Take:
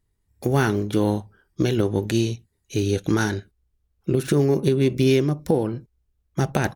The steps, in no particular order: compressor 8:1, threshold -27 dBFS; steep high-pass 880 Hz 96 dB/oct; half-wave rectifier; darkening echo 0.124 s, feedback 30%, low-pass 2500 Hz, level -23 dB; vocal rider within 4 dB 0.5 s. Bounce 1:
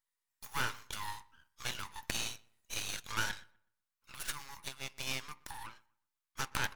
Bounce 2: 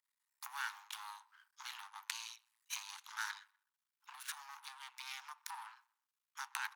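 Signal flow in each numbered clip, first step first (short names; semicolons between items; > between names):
vocal rider > steep high-pass > half-wave rectifier > compressor > darkening echo; vocal rider > compressor > darkening echo > half-wave rectifier > steep high-pass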